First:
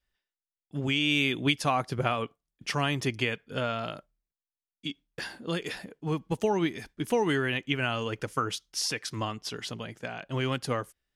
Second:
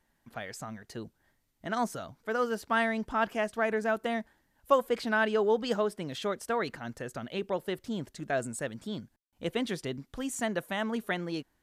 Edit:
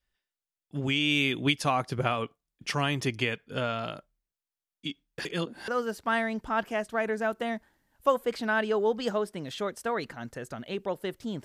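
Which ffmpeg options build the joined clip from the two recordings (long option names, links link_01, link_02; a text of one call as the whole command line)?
ffmpeg -i cue0.wav -i cue1.wav -filter_complex "[0:a]apad=whole_dur=11.44,atrim=end=11.44,asplit=2[link_01][link_02];[link_01]atrim=end=5.252[link_03];[link_02]atrim=start=5.248:end=5.682,asetpts=PTS-STARTPTS,areverse[link_04];[1:a]atrim=start=2.318:end=8.08[link_05];[link_03][link_04]acrossfade=duration=0.004:curve1=hsin:curve2=hsin[link_06];[link_06][link_05]acrossfade=duration=0.004:curve1=hsin:curve2=hsin" out.wav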